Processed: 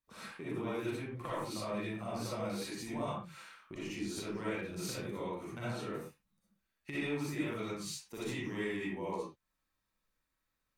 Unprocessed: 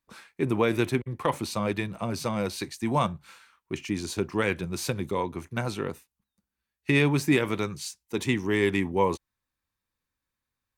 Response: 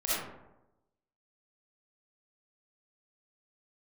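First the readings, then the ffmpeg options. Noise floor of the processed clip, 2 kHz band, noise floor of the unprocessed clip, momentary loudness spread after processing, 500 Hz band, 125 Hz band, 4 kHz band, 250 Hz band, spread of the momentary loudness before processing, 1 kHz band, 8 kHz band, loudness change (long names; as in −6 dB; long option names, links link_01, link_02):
−85 dBFS, −12.0 dB, below −85 dBFS, 8 LU, −11.5 dB, −13.0 dB, −9.5 dB, −11.0 dB, 11 LU, −12.0 dB, −8.0 dB, −11.5 dB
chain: -filter_complex "[0:a]acompressor=threshold=-40dB:ratio=3[link_01];[1:a]atrim=start_sample=2205,afade=type=out:start_time=0.24:duration=0.01,atrim=end_sample=11025[link_02];[link_01][link_02]afir=irnorm=-1:irlink=0,volume=-6dB"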